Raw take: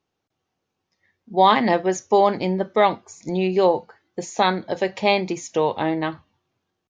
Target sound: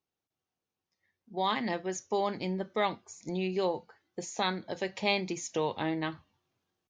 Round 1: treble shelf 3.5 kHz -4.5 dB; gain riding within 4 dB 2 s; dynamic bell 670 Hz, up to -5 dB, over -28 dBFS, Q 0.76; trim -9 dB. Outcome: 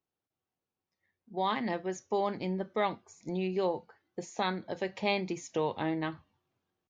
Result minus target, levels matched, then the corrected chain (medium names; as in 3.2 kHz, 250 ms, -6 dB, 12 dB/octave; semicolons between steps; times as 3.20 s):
8 kHz band -6.5 dB
treble shelf 3.5 kHz +4.5 dB; gain riding within 4 dB 2 s; dynamic bell 670 Hz, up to -5 dB, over -28 dBFS, Q 0.76; trim -9 dB